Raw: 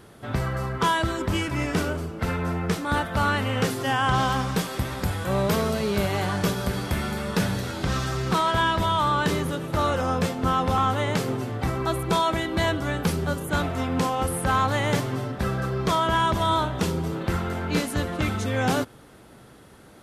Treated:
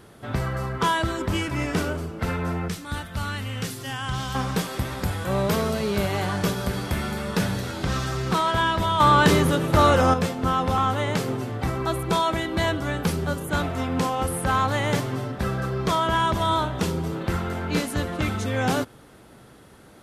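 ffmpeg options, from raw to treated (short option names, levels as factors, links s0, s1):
-filter_complex "[0:a]asettb=1/sr,asplit=3[s0][s1][s2];[s0]atrim=end=2.684[s3];[s1]atrim=start=2.68:end=4.35,asetpts=PTS-STARTPTS,afade=t=in:d=0.004:c=qsin,afade=t=out:st=1.666:d=0.004:c=qsin,equalizer=f=620:w=0.34:g=-12[s4];[s2]atrim=start=4.346[s5];[s3][s4]acrossfade=d=0.004:c1=hsin:c2=qsin[s6];[s6][s5]acrossfade=d=0.004:c1=qsin:c2=hsin,asettb=1/sr,asplit=3[s7][s8][s9];[s7]atrim=end=9.004[s10];[s8]atrim=start=9:end=10.14,asetpts=PTS-STARTPTS,afade=t=in:d=0.004:c=qsin,afade=t=out:st=1.136:d=0.004:c=qsin,acontrast=82[s11];[s9]atrim=start=10.136[s12];[s10][s11]acrossfade=d=0.004:c1=hsin:c2=qsin[s13];[s13][s12]acrossfade=d=0.004:c1=qsin:c2=hsin"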